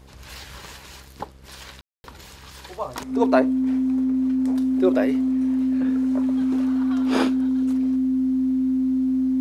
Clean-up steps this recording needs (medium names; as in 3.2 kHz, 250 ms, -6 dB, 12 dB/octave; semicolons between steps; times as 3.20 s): de-hum 66 Hz, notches 9; band-stop 260 Hz, Q 30; room tone fill 1.81–2.04 s